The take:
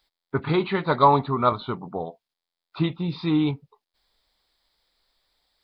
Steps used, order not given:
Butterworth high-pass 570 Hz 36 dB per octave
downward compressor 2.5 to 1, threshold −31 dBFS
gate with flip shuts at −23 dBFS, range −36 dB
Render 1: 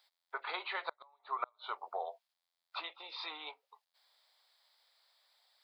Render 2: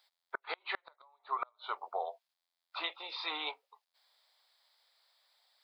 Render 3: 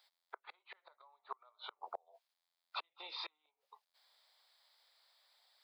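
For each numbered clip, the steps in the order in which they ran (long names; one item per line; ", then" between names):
downward compressor, then Butterworth high-pass, then gate with flip
Butterworth high-pass, then downward compressor, then gate with flip
downward compressor, then gate with flip, then Butterworth high-pass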